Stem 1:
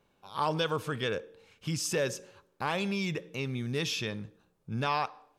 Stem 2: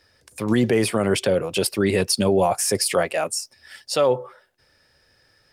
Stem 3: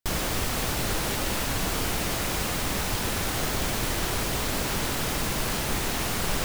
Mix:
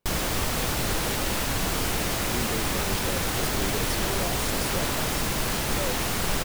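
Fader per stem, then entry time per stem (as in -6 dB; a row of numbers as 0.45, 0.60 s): -11.5, -15.5, +1.0 dB; 0.00, 1.80, 0.00 s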